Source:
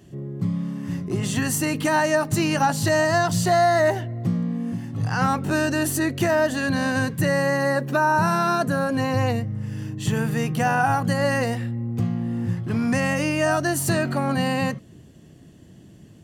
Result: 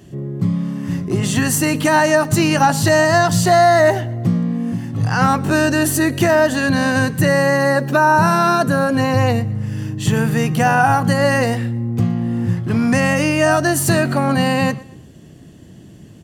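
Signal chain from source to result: feedback delay 117 ms, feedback 36%, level -21.5 dB; trim +6.5 dB

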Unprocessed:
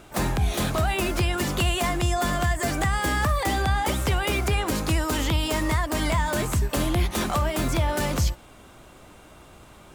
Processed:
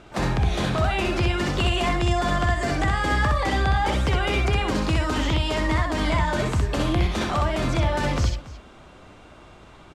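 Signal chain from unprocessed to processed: low-pass 5.1 kHz 12 dB/octave; multi-tap echo 63/281 ms -3.5/-17.5 dB

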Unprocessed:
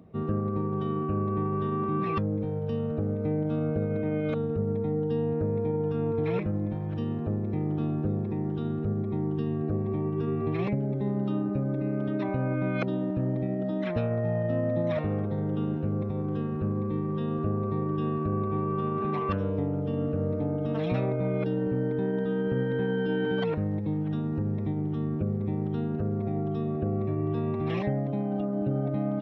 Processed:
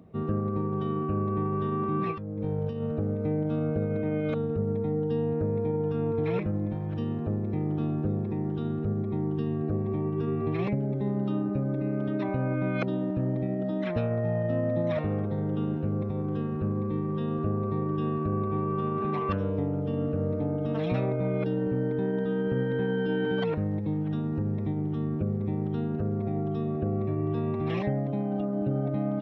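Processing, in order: 2.11–2.82 s: compressor with a negative ratio -31 dBFS, ratio -0.5

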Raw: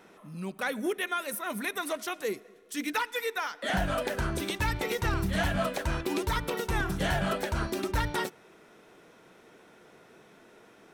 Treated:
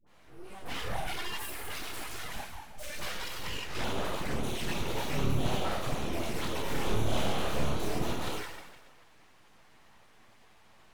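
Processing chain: plate-style reverb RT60 1.4 s, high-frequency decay 0.85×, DRR -8.5 dB; touch-sensitive flanger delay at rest 11 ms, full sweep at -17.5 dBFS; full-wave rectifier; 6.61–7.92 s: doubling 29 ms -3 dB; phase dispersion highs, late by 69 ms, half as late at 710 Hz; trim -7.5 dB

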